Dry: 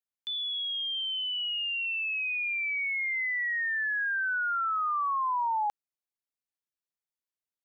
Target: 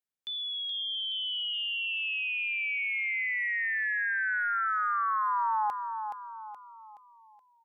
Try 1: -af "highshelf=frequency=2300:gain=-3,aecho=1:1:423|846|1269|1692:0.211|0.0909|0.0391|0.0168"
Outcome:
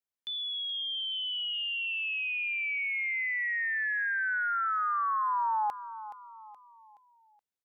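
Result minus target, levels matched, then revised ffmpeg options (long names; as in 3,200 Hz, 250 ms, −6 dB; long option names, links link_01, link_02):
echo-to-direct −6.5 dB
-af "highshelf=frequency=2300:gain=-3,aecho=1:1:423|846|1269|1692|2115:0.447|0.192|0.0826|0.0355|0.0153"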